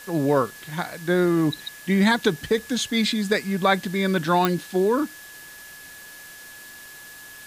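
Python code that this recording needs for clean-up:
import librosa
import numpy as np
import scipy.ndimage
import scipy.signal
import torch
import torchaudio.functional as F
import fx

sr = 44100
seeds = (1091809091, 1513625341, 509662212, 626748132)

y = fx.fix_declick_ar(x, sr, threshold=10.0)
y = fx.notch(y, sr, hz=1700.0, q=30.0)
y = fx.noise_reduce(y, sr, print_start_s=6.71, print_end_s=7.21, reduce_db=25.0)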